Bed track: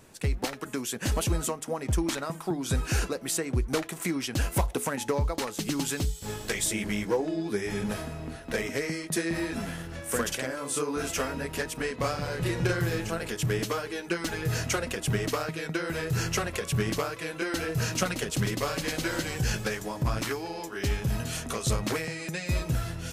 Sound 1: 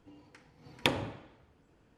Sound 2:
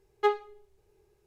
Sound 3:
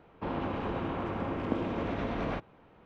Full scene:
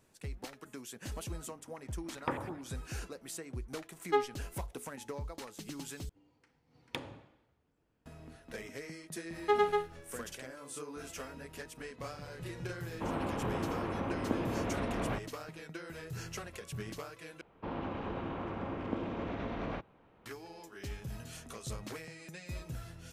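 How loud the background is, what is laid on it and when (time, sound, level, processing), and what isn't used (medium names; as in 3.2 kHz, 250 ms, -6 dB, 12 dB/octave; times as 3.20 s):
bed track -14 dB
1.42 s: add 1 -6 dB + LFO low-pass saw up 8.4 Hz 960–2400 Hz
3.89 s: add 2 -4 dB
6.09 s: replace with 1 -12 dB
9.25 s: add 2 -4 dB + loudspeakers at several distances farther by 35 m 0 dB, 83 m -3 dB
12.79 s: add 3 -2 dB
17.41 s: replace with 3 -5 dB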